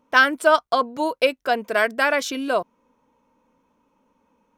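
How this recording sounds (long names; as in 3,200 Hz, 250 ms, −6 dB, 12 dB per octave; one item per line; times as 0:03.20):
background noise floor −68 dBFS
spectral slope −2.0 dB per octave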